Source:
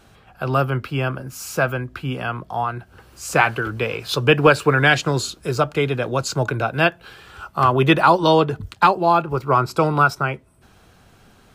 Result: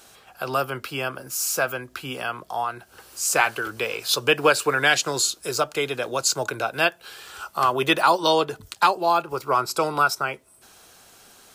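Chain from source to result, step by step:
bass and treble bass −14 dB, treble +12 dB
in parallel at −2.5 dB: downward compressor, threshold −32 dBFS, peak gain reduction 21.5 dB
on the sum: level −4.5 dB

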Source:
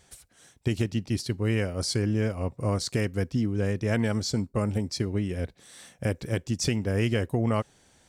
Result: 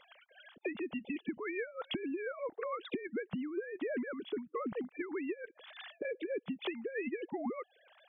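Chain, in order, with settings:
three sine waves on the formant tracks
harmonic and percussive parts rebalanced harmonic −12 dB
downward compressor 12 to 1, threshold −43 dBFS, peak gain reduction 22 dB
level +8 dB

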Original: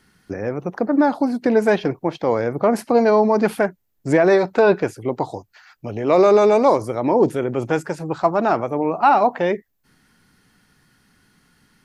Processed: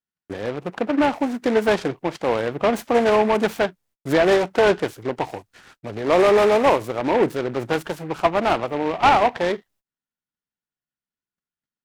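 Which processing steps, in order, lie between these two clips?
noise gate −52 dBFS, range −37 dB
low-shelf EQ 400 Hz −5.5 dB
short delay modulated by noise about 1,300 Hz, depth 0.06 ms

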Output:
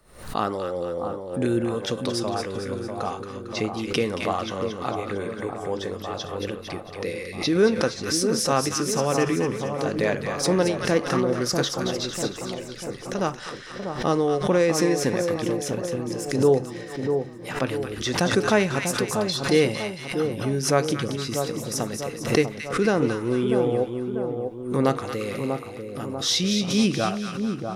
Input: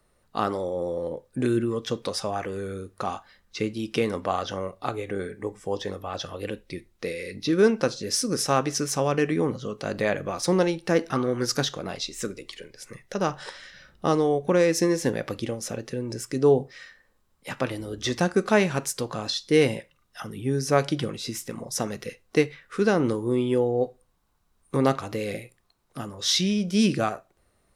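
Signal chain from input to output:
echo with a time of its own for lows and highs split 1,200 Hz, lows 643 ms, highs 226 ms, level −6 dB
background raised ahead of every attack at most 100 dB per second

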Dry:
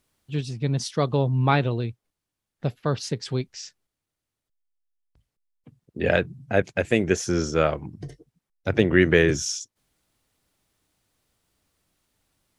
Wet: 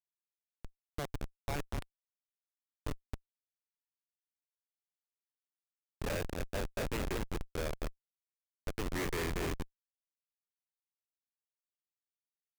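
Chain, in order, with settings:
peak hold with a decay on every bin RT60 0.36 s
loudspeaker in its box 480–9,000 Hz, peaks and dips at 830 Hz −4 dB, 1,300 Hz −7 dB, 2,200 Hz +8 dB, 5,100 Hz −8 dB
on a send: feedback echo with a low-pass in the loop 229 ms, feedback 46%, low-pass 3,200 Hz, level −5.5 dB
on the sum: comparator with hysteresis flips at −20 dBFS
level −5.5 dB

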